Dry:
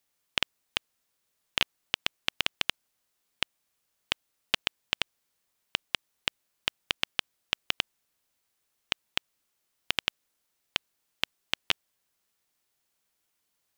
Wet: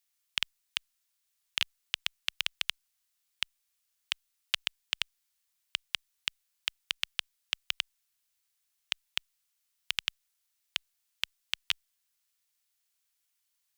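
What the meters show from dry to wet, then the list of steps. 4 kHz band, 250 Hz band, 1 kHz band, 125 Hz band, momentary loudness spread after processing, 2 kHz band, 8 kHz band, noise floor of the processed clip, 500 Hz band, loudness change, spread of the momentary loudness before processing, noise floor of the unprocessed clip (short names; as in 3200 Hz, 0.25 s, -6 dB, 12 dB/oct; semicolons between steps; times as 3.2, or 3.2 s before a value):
-2.0 dB, under -20 dB, -9.0 dB, under -10 dB, 5 LU, -3.5 dB, -0.5 dB, -79 dBFS, -16.5 dB, -2.5 dB, 5 LU, -78 dBFS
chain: passive tone stack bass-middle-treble 10-0-10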